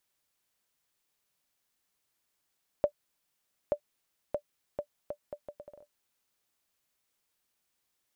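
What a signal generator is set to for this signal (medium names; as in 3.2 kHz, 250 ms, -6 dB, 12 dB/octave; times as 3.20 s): bouncing ball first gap 0.88 s, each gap 0.71, 587 Hz, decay 79 ms -14.5 dBFS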